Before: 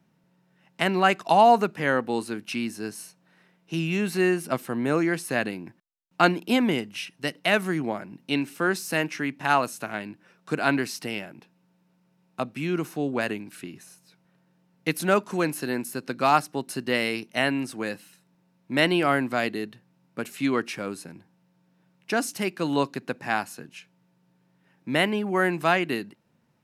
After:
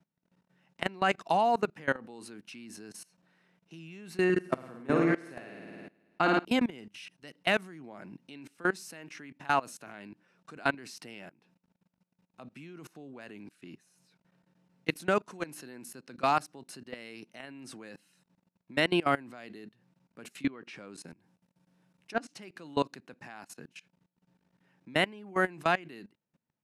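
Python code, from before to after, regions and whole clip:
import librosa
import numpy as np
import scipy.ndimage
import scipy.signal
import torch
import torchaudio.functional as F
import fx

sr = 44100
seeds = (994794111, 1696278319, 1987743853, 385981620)

y = fx.chain(x, sr, fx.high_shelf(hz=5100.0, db=-9.5),
    fx.room_flutter(wall_m=9.3, rt60_s=1.1), at=(4.24, 6.45))
y = fx.chain(y, sr, fx.env_lowpass_down(base_hz=2800.0, full_db=-23.0),
    fx.peak_eq(hz=11000.0, db=7.5, octaves=1.1), at=(20.4, 22.43))
y = scipy.signal.sosfilt(scipy.signal.butter(2, 10000.0, 'lowpass', fs=sr, output='sos'), y)
y = fx.peak_eq(y, sr, hz=100.0, db=-3.0, octaves=0.42)
y = fx.level_steps(y, sr, step_db=22)
y = y * librosa.db_to_amplitude(-2.5)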